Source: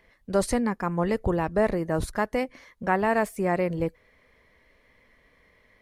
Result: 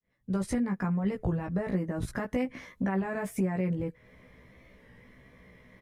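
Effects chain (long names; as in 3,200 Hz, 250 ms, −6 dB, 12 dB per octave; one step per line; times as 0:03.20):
fade in at the beginning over 1.04 s
brickwall limiter −20 dBFS, peak gain reduction 10.5 dB
parametric band 150 Hz +13.5 dB 2 octaves
notch filter 4,400 Hz, Q 10
dynamic equaliser 2,000 Hz, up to +5 dB, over −47 dBFS, Q 0.8
downward compressor 6 to 1, threshold −29 dBFS, peak gain reduction 13 dB
double-tracking delay 16 ms −3 dB
wow of a warped record 33 1/3 rpm, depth 100 cents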